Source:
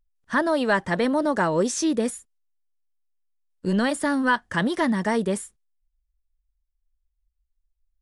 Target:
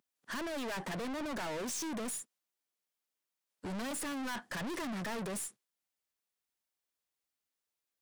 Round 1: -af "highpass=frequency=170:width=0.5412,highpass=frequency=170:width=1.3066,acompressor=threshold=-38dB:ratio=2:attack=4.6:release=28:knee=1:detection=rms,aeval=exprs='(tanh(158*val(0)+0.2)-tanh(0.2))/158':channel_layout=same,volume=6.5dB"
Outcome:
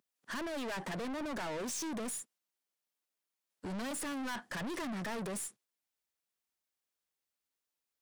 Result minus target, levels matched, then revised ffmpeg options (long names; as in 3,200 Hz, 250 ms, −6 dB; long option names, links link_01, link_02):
downward compressor: peak gain reduction +4 dB
-af "highpass=frequency=170:width=0.5412,highpass=frequency=170:width=1.3066,acompressor=threshold=-30dB:ratio=2:attack=4.6:release=28:knee=1:detection=rms,aeval=exprs='(tanh(158*val(0)+0.2)-tanh(0.2))/158':channel_layout=same,volume=6.5dB"